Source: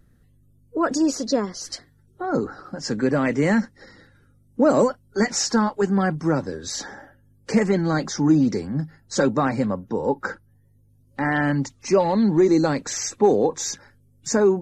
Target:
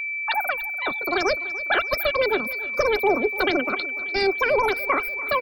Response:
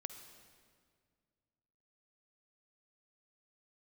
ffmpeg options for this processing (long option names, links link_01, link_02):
-filter_complex "[0:a]afftdn=noise_reduction=24:noise_floor=-29,lowpass=5500,asubboost=boost=9.5:cutoff=97,aeval=exprs='val(0)+0.0631*sin(2*PI*860*n/s)':channel_layout=same,asetrate=119070,aresample=44100,asplit=2[link_01][link_02];[link_02]aecho=0:1:293|586|879|1172|1465:0.126|0.0692|0.0381|0.0209|0.0115[link_03];[link_01][link_03]amix=inputs=2:normalize=0,volume=-2dB"